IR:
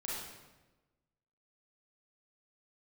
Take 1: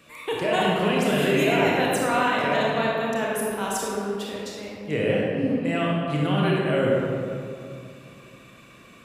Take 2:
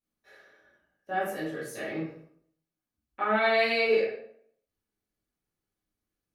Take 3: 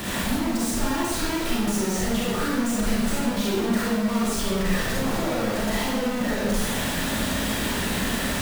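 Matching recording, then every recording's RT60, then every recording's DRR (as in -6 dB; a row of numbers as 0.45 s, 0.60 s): 3; 2.5 s, 0.65 s, 1.1 s; -4.5 dB, -11.0 dB, -6.5 dB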